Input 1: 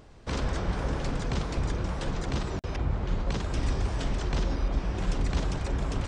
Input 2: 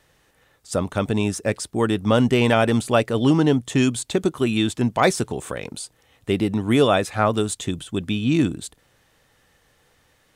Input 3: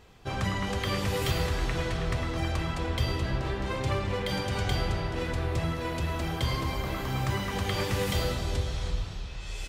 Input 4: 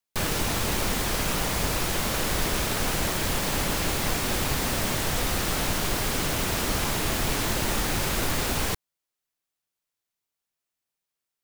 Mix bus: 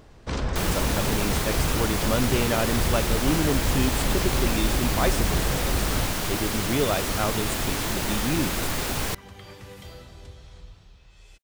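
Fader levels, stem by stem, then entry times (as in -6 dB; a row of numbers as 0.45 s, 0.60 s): +2.0 dB, -8.0 dB, -14.5 dB, -1.0 dB; 0.00 s, 0.00 s, 1.70 s, 0.40 s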